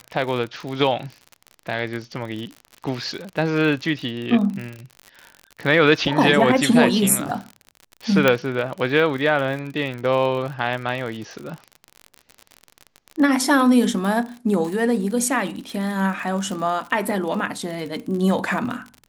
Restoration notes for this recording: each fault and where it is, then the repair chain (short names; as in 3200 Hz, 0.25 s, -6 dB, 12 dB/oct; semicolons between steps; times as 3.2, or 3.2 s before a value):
crackle 54/s -28 dBFS
8.28 pop -3 dBFS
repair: de-click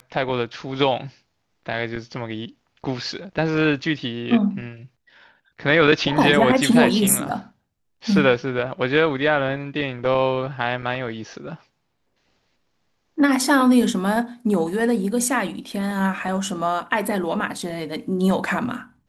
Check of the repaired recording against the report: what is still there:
none